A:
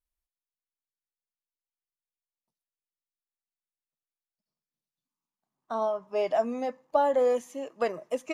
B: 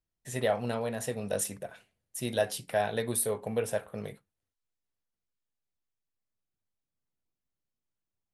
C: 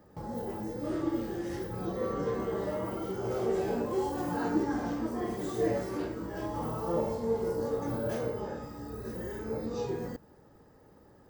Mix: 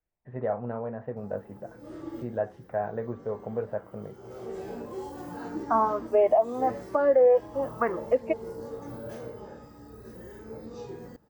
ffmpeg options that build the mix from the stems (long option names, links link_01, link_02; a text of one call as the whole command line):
ffmpeg -i stem1.wav -i stem2.wav -i stem3.wav -filter_complex "[0:a]lowpass=frequency=2100:width=0.5412,lowpass=frequency=2100:width=1.3066,equalizer=frequency=740:width=0.32:gain=12.5,asplit=2[link_01][link_02];[link_02]afreqshift=0.98[link_03];[link_01][link_03]amix=inputs=2:normalize=1,volume=0dB[link_04];[1:a]lowpass=frequency=1400:width=0.5412,lowpass=frequency=1400:width=1.3066,volume=-1dB,asplit=2[link_05][link_06];[2:a]adelay=1000,volume=-6.5dB[link_07];[link_06]apad=whole_len=542270[link_08];[link_07][link_08]sidechaincompress=threshold=-38dB:ratio=12:attack=22:release=893[link_09];[link_04][link_05][link_09]amix=inputs=3:normalize=0,alimiter=limit=-13dB:level=0:latency=1:release=338" out.wav